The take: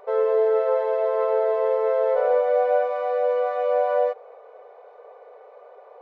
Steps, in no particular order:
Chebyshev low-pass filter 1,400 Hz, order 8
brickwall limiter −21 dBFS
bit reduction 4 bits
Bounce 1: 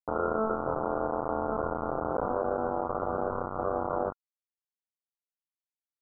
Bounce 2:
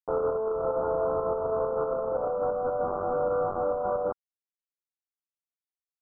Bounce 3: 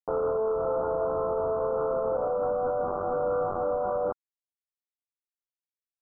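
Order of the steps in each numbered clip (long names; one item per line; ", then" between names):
brickwall limiter, then bit reduction, then Chebyshev low-pass filter
bit reduction, then brickwall limiter, then Chebyshev low-pass filter
bit reduction, then Chebyshev low-pass filter, then brickwall limiter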